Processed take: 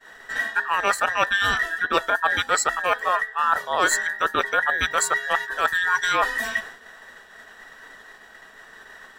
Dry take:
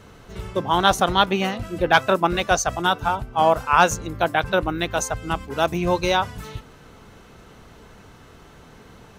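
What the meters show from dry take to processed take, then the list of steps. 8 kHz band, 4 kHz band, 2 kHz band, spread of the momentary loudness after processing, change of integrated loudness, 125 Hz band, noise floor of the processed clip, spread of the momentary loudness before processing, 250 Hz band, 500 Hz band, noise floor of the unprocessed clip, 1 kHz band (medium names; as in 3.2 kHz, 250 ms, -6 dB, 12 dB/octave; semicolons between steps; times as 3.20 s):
+1.5 dB, -2.5 dB, +4.5 dB, 4 LU, -1.0 dB, -16.0 dB, -48 dBFS, 11 LU, -12.5 dB, -7.0 dB, -48 dBFS, -2.5 dB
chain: every band turned upside down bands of 2 kHz; expander -39 dBFS; reverse; compression 6:1, threshold -27 dBFS, peak gain reduction 16 dB; reverse; trim +8.5 dB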